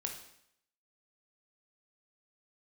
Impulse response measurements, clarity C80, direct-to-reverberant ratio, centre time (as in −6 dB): 10.0 dB, 2.0 dB, 24 ms